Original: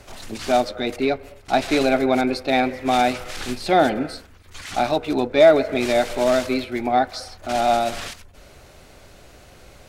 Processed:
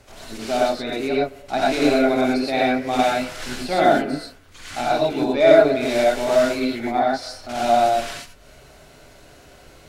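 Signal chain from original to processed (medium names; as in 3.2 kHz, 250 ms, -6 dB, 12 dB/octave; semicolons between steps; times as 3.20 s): gated-style reverb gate 140 ms rising, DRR -5 dB; trim -6 dB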